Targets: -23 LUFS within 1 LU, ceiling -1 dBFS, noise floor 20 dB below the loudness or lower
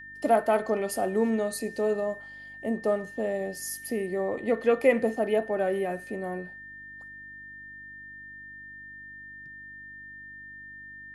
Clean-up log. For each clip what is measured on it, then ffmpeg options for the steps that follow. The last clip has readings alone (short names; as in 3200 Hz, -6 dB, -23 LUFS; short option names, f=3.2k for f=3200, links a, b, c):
hum 50 Hz; harmonics up to 300 Hz; hum level -58 dBFS; steady tone 1800 Hz; tone level -42 dBFS; loudness -28.0 LUFS; peak -9.0 dBFS; loudness target -23.0 LUFS
-> -af "bandreject=f=50:t=h:w=4,bandreject=f=100:t=h:w=4,bandreject=f=150:t=h:w=4,bandreject=f=200:t=h:w=4,bandreject=f=250:t=h:w=4,bandreject=f=300:t=h:w=4"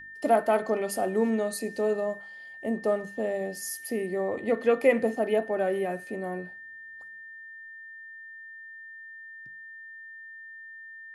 hum none; steady tone 1800 Hz; tone level -42 dBFS
-> -af "bandreject=f=1.8k:w=30"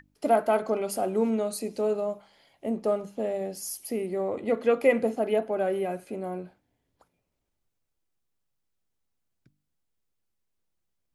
steady tone none; loudness -28.0 LUFS; peak -9.0 dBFS; loudness target -23.0 LUFS
-> -af "volume=5dB"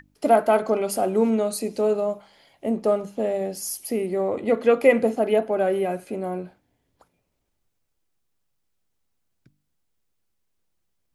loudness -23.0 LUFS; peak -4.0 dBFS; noise floor -74 dBFS